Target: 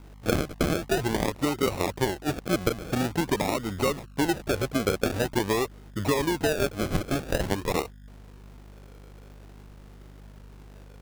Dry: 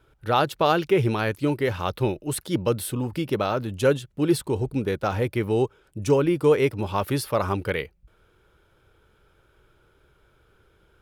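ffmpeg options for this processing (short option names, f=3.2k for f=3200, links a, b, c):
-filter_complex "[0:a]highpass=78,acrossover=split=3200[a][b];[b]acompressor=threshold=-47dB:ratio=4:attack=1:release=60[c];[a][c]amix=inputs=2:normalize=0,equalizer=f=125:t=o:w=1:g=-6,equalizer=f=1k:t=o:w=1:g=3,equalizer=f=2k:t=o:w=1:g=4,acrossover=split=3200[d][e];[d]acompressor=threshold=-28dB:ratio=12[f];[f][e]amix=inputs=2:normalize=0,aeval=exprs='val(0)+0.00251*(sin(2*PI*50*n/s)+sin(2*PI*2*50*n/s)/2+sin(2*PI*3*50*n/s)/3+sin(2*PI*4*50*n/s)/4+sin(2*PI*5*50*n/s)/5)':c=same,acrusher=samples=37:mix=1:aa=0.000001:lfo=1:lforange=22.2:lforate=0.47,volume=6dB"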